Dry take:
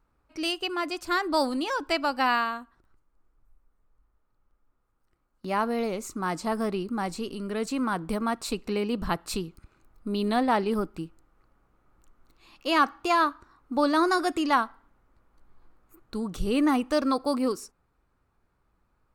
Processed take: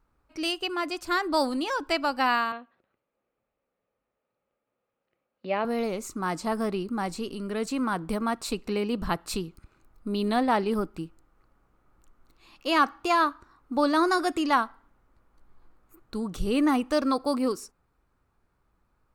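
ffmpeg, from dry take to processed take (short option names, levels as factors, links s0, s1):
-filter_complex "[0:a]asettb=1/sr,asplit=3[s0][s1][s2];[s0]atrim=end=2.524[s3];[s1]atrim=start=2.52:end=5.65,asetpts=PTS-STARTPTS,afade=t=in:d=0.004:c=qsin,afade=t=out:st=3.126:d=0.004:c=qsin,highpass=210,equalizer=f=310:t=q:w=4:g=-7,equalizer=f=540:t=q:w=4:g=9,equalizer=f=1000:t=q:w=4:g=-7,equalizer=f=1400:t=q:w=4:g=-6,equalizer=f=2500:t=q:w=4:g=5,lowpass=f=3800:w=0.5412,lowpass=f=3800:w=1.3066[s4];[s2]atrim=start=5.646[s5];[s3][s4]acrossfade=d=0.004:c1=hsin:c2=qsin[s6];[s6][s5]acrossfade=d=0.004:c1=qsin:c2=hsin"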